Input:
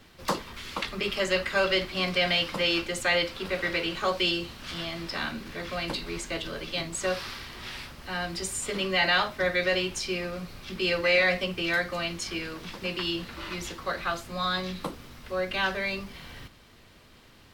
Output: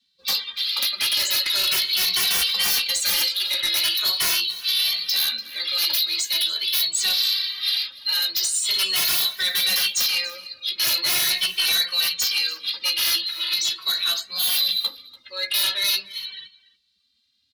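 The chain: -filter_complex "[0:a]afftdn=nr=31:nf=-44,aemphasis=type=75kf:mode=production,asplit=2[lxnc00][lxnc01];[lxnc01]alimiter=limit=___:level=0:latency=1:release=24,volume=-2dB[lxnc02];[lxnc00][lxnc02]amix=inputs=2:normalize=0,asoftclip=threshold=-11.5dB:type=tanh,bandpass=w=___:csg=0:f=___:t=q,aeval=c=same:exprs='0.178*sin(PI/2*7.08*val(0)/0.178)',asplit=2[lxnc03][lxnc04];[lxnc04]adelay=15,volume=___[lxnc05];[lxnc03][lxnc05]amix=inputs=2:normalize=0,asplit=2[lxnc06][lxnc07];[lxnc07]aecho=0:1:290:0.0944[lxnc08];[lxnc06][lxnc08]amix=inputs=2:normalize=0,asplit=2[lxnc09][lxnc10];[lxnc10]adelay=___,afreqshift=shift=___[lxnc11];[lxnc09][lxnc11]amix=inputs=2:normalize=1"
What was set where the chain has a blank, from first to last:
-16dB, 6.2, 4k, -12dB, 2.2, 0.42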